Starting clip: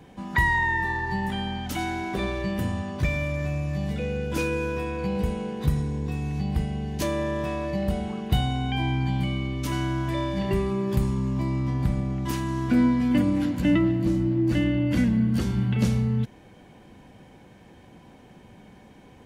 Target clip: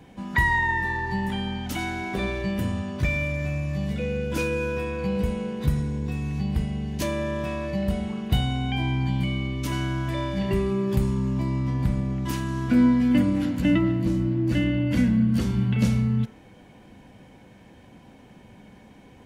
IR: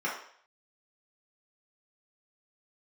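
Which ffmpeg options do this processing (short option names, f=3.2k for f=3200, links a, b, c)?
-filter_complex "[0:a]asplit=2[a][b];[1:a]atrim=start_sample=2205,lowpass=f=3.1k:w=0.5412,lowpass=f=3.1k:w=1.3066[c];[b][c]afir=irnorm=-1:irlink=0,volume=-18dB[d];[a][d]amix=inputs=2:normalize=0"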